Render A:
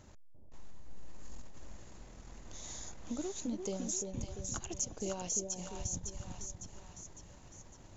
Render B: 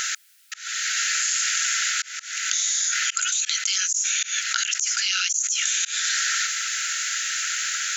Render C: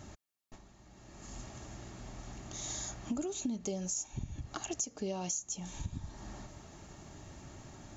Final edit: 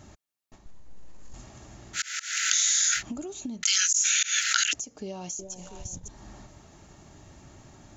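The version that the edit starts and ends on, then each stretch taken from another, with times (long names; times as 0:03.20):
C
0:00.66–0:01.34: punch in from A
0:01.98–0:02.98: punch in from B, crossfade 0.10 s
0:03.63–0:04.73: punch in from B
0:05.39–0:06.08: punch in from A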